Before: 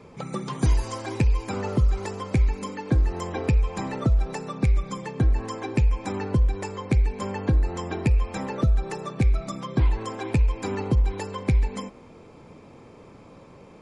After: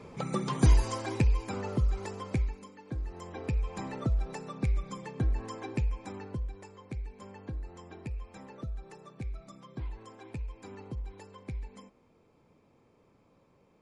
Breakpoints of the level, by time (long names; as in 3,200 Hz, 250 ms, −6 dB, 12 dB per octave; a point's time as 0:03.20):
0:00.73 −0.5 dB
0:01.63 −7 dB
0:02.33 −7 dB
0:02.71 −18 dB
0:03.73 −8 dB
0:05.68 −8 dB
0:06.68 −17.5 dB